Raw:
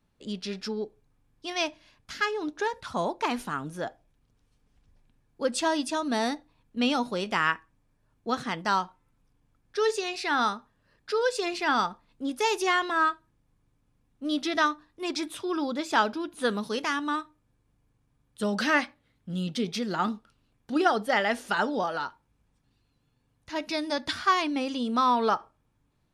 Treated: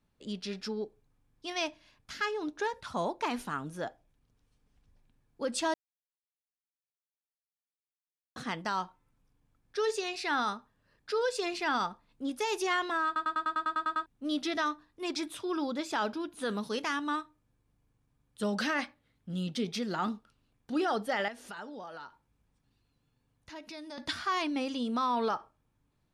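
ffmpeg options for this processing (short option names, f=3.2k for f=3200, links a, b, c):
-filter_complex "[0:a]asettb=1/sr,asplit=3[a][b][c];[a]atrim=end=21.284[d];[b]atrim=start=21.28:end=23.98,asetpts=PTS-STARTPTS,afade=t=in:d=0.004:c=qsin,afade=t=out:st=2.696:d=0.004:c=qsin,acompressor=threshold=-43dB:ratio=2.5:attack=3.2:release=140:knee=1:detection=peak[e];[c]atrim=start=23.976[f];[d][e]acrossfade=d=0.004:c1=hsin:c2=qsin[g];[g][f]acrossfade=d=0.004:c1=qsin:c2=hsin,asplit=13[h][i][j][k][l][m][n][o][p][q][r][s][t];[h]atrim=end=5.74,asetpts=PTS-STARTPTS,afade=t=out:st=5.736:d=0.004:c=hsin[u];[i]atrim=start=5.74:end=8.36,asetpts=PTS-STARTPTS,volume=0[v];[j]atrim=start=8.36:end=13.162,asetpts=PTS-STARTPTS,afade=t=in:d=0.004:c=hsin[w];[k]atrim=start=13.058:end=13.162[x];[l]atrim=start=13.058:end=13.162[y];[m]atrim=start=13.058:end=13.162[z];[n]atrim=start=13.058:end=13.162[aa];[o]atrim=start=13.058:end=13.162[ab];[p]atrim=start=13.058:end=13.162[ac];[q]atrim=start=13.058:end=13.162[ad];[r]atrim=start=13.058:end=13.162[ae];[s]atrim=start=13.058:end=13.162[af];[t]atrim=start=14.058[ag];[u][v][w]concat=n=3:v=0:a=1[ah];[ah][x]acrossfade=d=0.004:c1=hsin:c2=hsin[ai];[ai][y]acrossfade=d=0.004:c1=hsin:c2=hsin[aj];[aj][z]acrossfade=d=0.004:c1=hsin:c2=hsin[ak];[ak][aa]acrossfade=d=0.004:c1=hsin:c2=hsin[al];[al][ab]acrossfade=d=0.004:c1=hsin:c2=hsin[am];[am][ac]acrossfade=d=0.004:c1=hsin:c2=hsin[an];[an][ad]acrossfade=d=0.004:c1=hsin:c2=hsin[ao];[ao][ae]acrossfade=d=0.004:c1=hsin:c2=hsin[ap];[ap][af]acrossfade=d=0.004:c1=hsin:c2=hsin[aq];[aq][ag]acrossfade=d=0.004:c1=hsin:c2=hsin,alimiter=limit=-18.5dB:level=0:latency=1:release=17,volume=-3.5dB"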